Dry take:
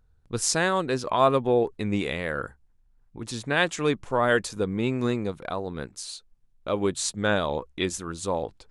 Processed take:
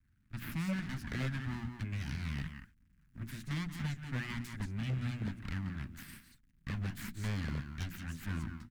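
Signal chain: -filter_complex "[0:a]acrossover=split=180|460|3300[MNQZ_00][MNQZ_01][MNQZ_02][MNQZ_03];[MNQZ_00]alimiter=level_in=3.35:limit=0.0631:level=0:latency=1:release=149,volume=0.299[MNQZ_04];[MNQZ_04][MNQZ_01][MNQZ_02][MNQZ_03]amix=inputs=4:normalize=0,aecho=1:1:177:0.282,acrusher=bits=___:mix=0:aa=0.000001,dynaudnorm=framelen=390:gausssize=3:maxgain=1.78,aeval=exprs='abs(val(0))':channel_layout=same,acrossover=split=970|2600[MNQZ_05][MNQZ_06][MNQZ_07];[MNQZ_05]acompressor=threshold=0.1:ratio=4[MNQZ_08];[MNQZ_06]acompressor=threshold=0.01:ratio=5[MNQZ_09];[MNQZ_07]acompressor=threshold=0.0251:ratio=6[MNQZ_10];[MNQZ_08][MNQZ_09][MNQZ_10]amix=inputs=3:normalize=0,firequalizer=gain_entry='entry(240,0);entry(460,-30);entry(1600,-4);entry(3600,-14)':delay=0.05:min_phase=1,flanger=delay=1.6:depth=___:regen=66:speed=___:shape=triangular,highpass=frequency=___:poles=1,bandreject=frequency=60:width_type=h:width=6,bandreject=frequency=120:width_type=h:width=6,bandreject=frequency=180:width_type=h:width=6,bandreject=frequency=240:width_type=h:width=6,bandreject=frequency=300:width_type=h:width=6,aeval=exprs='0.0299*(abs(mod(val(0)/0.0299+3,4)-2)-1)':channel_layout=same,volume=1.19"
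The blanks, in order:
10, 7.8, 1.1, 52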